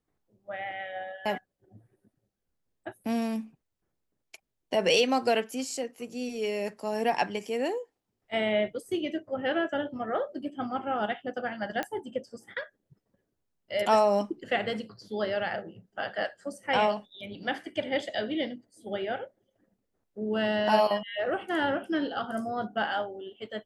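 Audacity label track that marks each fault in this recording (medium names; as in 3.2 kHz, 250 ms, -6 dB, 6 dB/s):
11.830000	11.830000	pop -17 dBFS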